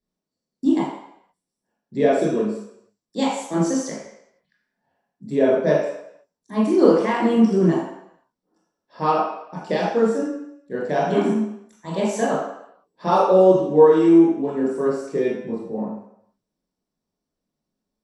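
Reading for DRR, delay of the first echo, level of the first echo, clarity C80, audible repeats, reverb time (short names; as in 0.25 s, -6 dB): -6.5 dB, none, none, 4.0 dB, none, 0.75 s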